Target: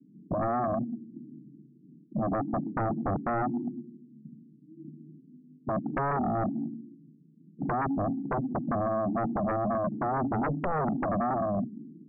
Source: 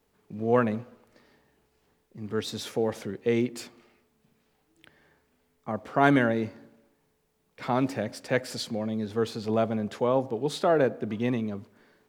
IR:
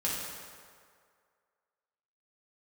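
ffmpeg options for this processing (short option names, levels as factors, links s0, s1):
-af "asuperpass=centerf=210:order=12:qfactor=1.1,acompressor=threshold=0.0178:ratio=12,aeval=exprs='0.0335*sin(PI/2*4.47*val(0)/0.0335)':c=same,volume=1.68"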